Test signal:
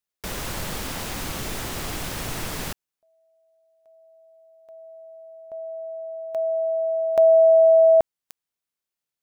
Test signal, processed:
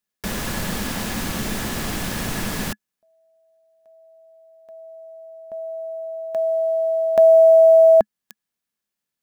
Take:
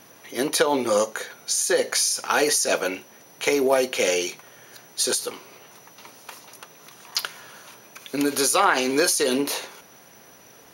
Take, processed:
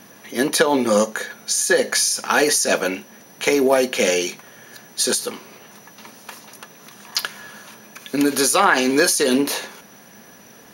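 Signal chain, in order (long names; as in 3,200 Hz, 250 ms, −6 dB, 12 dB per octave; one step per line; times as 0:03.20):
hollow resonant body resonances 210/1,700 Hz, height 10 dB, ringing for 55 ms
floating-point word with a short mantissa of 6 bits
level +3 dB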